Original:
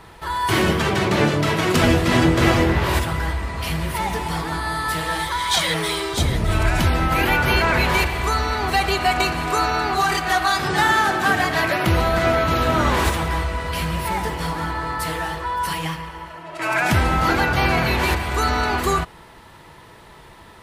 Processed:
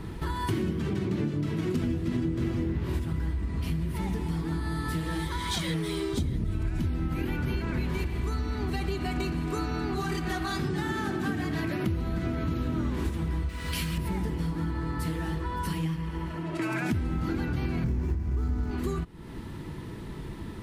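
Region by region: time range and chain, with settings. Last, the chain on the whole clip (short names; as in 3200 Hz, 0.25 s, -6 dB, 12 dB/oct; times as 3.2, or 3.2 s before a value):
13.49–13.98 tilt shelf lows -8.5 dB, about 1200 Hz + sample gate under -39 dBFS
17.84–18.71 median filter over 15 samples + low shelf 150 Hz +11 dB + notch 3800 Hz, Q 27
whole clip: resonant low shelf 430 Hz +13 dB, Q 1.5; compressor, threshold -25 dBFS; gain -3 dB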